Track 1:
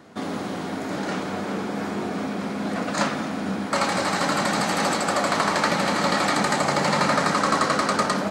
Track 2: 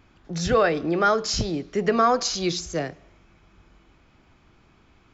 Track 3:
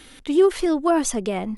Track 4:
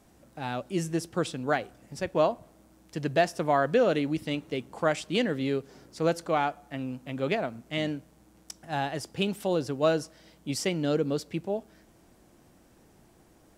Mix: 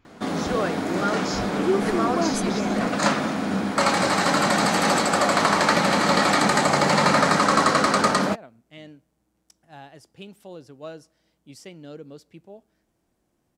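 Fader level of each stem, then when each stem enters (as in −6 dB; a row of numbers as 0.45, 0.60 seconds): +2.5, −7.0, −6.5, −13.5 decibels; 0.05, 0.00, 1.30, 1.00 seconds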